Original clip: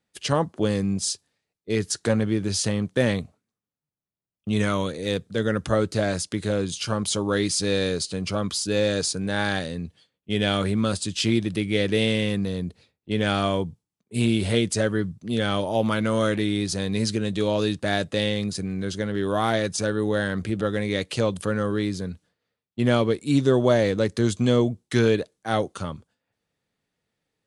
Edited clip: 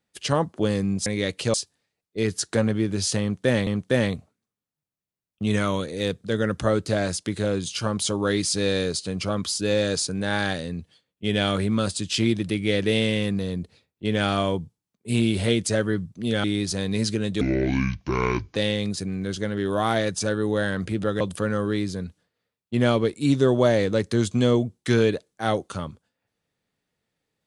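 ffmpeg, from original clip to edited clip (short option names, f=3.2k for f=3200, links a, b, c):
-filter_complex "[0:a]asplit=8[a][b][c][d][e][f][g][h];[a]atrim=end=1.062[i];[b]atrim=start=20.778:end=21.262[j];[c]atrim=start=1.058:end=3.192[k];[d]atrim=start=2.728:end=15.502[l];[e]atrim=start=16.448:end=17.424[m];[f]atrim=start=17.42:end=18.13,asetpts=PTS-STARTPTS,asetrate=27342,aresample=44100[n];[g]atrim=start=18.126:end=20.782[o];[h]atrim=start=21.258[p];[i][j]acrossfade=d=0.004:c1=hsin:c2=hsin[q];[q][k]acrossfade=d=0.004:c1=hsin:c2=hsin[r];[r][l]acrossfade=d=0.004:c1=hsin:c2=hsin[s];[s][m]acrossfade=d=0.004:c1=hsin:c2=hsin[t];[t][n]acrossfade=d=0.004:c1=hsin:c2=hsin[u];[u][o]acrossfade=d=0.004:c1=hsin:c2=hsin[v];[v][p]acrossfade=d=0.004:c1=hsin:c2=hsin"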